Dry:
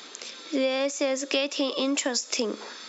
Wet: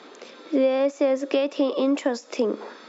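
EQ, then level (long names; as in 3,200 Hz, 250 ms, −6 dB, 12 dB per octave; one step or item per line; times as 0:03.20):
resonant band-pass 420 Hz, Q 0.58
+6.0 dB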